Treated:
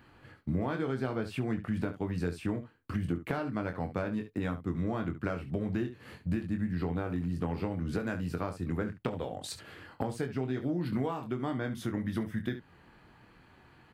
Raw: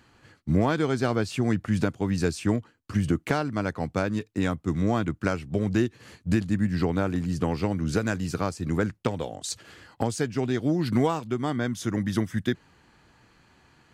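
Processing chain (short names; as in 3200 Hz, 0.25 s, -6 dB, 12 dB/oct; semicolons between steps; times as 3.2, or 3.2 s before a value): bell 6500 Hz -14 dB 1.1 oct; early reflections 23 ms -6.5 dB, 70 ms -13.5 dB; compressor 2.5:1, threshold -33 dBFS, peak gain reduction 11.5 dB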